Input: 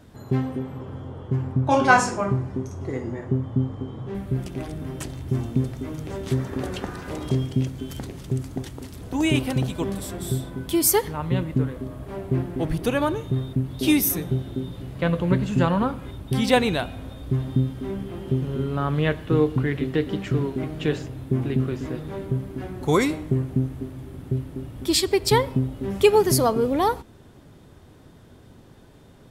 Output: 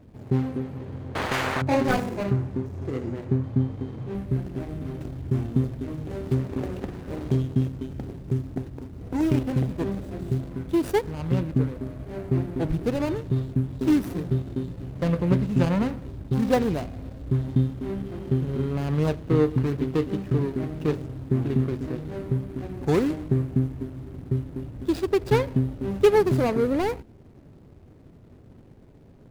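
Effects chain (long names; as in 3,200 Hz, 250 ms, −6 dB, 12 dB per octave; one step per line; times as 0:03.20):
running median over 41 samples
0:01.15–0:01.62: every bin compressed towards the loudest bin 10 to 1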